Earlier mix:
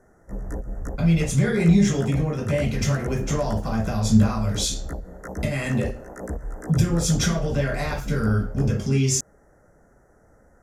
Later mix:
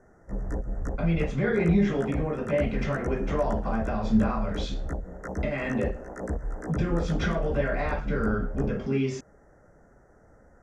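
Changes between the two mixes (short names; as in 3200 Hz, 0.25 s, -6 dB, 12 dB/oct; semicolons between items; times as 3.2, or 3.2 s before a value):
speech: add BPF 240–2300 Hz; master: add air absorption 63 m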